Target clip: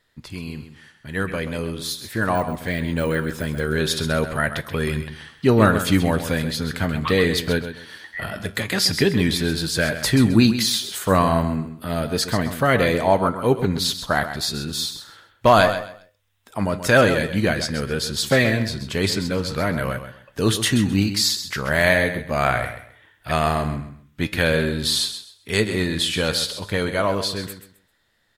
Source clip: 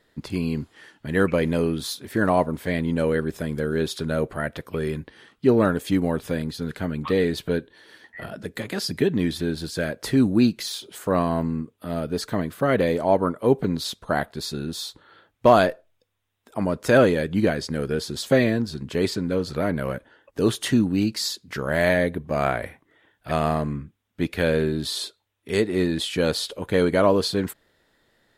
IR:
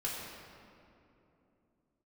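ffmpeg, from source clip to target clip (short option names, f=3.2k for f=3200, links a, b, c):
-filter_complex "[0:a]asettb=1/sr,asplit=3[a][b][c];[a]atrim=end=2.354[d];[b]atrim=start=2.35:end=3.76,asetpts=PTS-STARTPTS,afade=t=in:d=0.004:c=qsin,afade=t=out:st=1.406:d=0.004:c=qsin,deesser=1[e];[c]atrim=start=3.756[f];[d][e]acrossfade=d=0.004:c1=hsin:c2=qsin[g];[g][f]acrossfade=d=0.004:c1=qsin:c2=hsin,equalizer=f=350:t=o:w=2.5:g=-9.5,dynaudnorm=f=580:g=9:m=11dB,flanger=delay=8.1:depth=2.6:regen=81:speed=0.4:shape=triangular,asplit=2[h][i];[i]aecho=0:1:131|262|393:0.299|0.0716|0.0172[j];[h][j]amix=inputs=2:normalize=0,volume=4.5dB"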